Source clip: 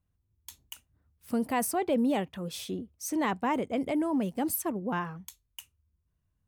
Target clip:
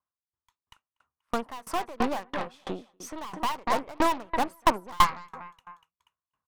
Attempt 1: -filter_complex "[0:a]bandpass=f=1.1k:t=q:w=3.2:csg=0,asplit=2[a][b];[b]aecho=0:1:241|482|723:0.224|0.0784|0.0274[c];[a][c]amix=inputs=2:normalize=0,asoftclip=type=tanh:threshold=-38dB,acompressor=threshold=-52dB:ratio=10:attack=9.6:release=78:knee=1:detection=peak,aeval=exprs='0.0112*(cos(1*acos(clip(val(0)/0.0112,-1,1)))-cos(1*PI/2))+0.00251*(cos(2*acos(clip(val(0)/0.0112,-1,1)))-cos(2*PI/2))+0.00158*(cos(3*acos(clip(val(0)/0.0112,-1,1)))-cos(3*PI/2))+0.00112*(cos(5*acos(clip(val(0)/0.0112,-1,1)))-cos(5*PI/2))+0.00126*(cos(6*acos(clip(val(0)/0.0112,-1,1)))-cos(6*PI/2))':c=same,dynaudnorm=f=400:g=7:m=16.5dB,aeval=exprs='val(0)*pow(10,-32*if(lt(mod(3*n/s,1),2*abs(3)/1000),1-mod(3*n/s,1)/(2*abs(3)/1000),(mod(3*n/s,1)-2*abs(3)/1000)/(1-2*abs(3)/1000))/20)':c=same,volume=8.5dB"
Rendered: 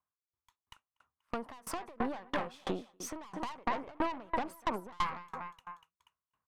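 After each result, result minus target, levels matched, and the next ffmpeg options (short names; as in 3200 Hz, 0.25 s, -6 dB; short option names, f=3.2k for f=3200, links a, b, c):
compressor: peak gain reduction +12.5 dB; soft clip: distortion +7 dB
-filter_complex "[0:a]bandpass=f=1.1k:t=q:w=3.2:csg=0,asplit=2[a][b];[b]aecho=0:1:241|482|723:0.224|0.0784|0.0274[c];[a][c]amix=inputs=2:normalize=0,asoftclip=type=tanh:threshold=-38dB,aeval=exprs='0.0112*(cos(1*acos(clip(val(0)/0.0112,-1,1)))-cos(1*PI/2))+0.00251*(cos(2*acos(clip(val(0)/0.0112,-1,1)))-cos(2*PI/2))+0.00158*(cos(3*acos(clip(val(0)/0.0112,-1,1)))-cos(3*PI/2))+0.00112*(cos(5*acos(clip(val(0)/0.0112,-1,1)))-cos(5*PI/2))+0.00126*(cos(6*acos(clip(val(0)/0.0112,-1,1)))-cos(6*PI/2))':c=same,dynaudnorm=f=400:g=7:m=16.5dB,aeval=exprs='val(0)*pow(10,-32*if(lt(mod(3*n/s,1),2*abs(3)/1000),1-mod(3*n/s,1)/(2*abs(3)/1000),(mod(3*n/s,1)-2*abs(3)/1000)/(1-2*abs(3)/1000))/20)':c=same,volume=8.5dB"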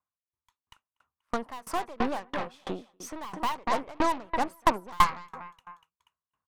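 soft clip: distortion +7 dB
-filter_complex "[0:a]bandpass=f=1.1k:t=q:w=3.2:csg=0,asplit=2[a][b];[b]aecho=0:1:241|482|723:0.224|0.0784|0.0274[c];[a][c]amix=inputs=2:normalize=0,asoftclip=type=tanh:threshold=-31dB,aeval=exprs='0.0112*(cos(1*acos(clip(val(0)/0.0112,-1,1)))-cos(1*PI/2))+0.00251*(cos(2*acos(clip(val(0)/0.0112,-1,1)))-cos(2*PI/2))+0.00158*(cos(3*acos(clip(val(0)/0.0112,-1,1)))-cos(3*PI/2))+0.00112*(cos(5*acos(clip(val(0)/0.0112,-1,1)))-cos(5*PI/2))+0.00126*(cos(6*acos(clip(val(0)/0.0112,-1,1)))-cos(6*PI/2))':c=same,dynaudnorm=f=400:g=7:m=16.5dB,aeval=exprs='val(0)*pow(10,-32*if(lt(mod(3*n/s,1),2*abs(3)/1000),1-mod(3*n/s,1)/(2*abs(3)/1000),(mod(3*n/s,1)-2*abs(3)/1000)/(1-2*abs(3)/1000))/20)':c=same,volume=8.5dB"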